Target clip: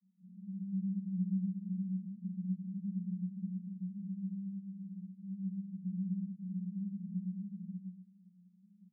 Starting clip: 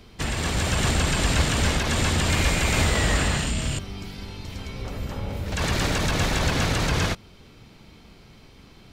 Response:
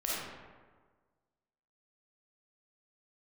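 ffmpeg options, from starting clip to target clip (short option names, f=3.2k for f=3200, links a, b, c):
-filter_complex "[0:a]aresample=11025,aeval=exprs='max(val(0),0)':c=same,aresample=44100,flanger=delay=17:depth=4.3:speed=0.84,asuperpass=centerf=190:order=8:qfactor=7.3,aecho=1:1:594:0.708[a];[1:a]atrim=start_sample=2205,asetrate=88200,aresample=44100[b];[a][b]afir=irnorm=-1:irlink=0,volume=9dB"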